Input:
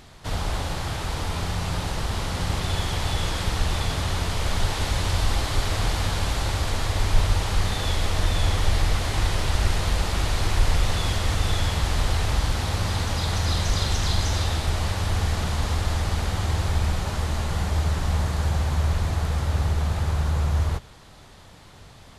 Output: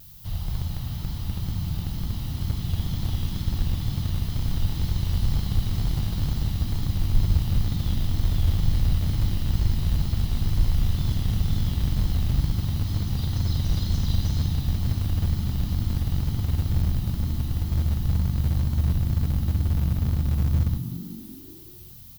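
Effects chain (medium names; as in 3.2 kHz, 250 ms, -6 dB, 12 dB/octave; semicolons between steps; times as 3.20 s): comb 1 ms, depth 32%; added noise blue -40 dBFS; graphic EQ 125/250/500/1000/2000/8000 Hz +5/-6/-10/-11/-11/-12 dB; on a send: frequency-shifting echo 189 ms, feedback 55%, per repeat +48 Hz, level -9 dB; on the sum: vibrato 2.1 Hz 53 cents; in parallel at -10 dB: Schmitt trigger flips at -15 dBFS; on the sum: trim -4.5 dB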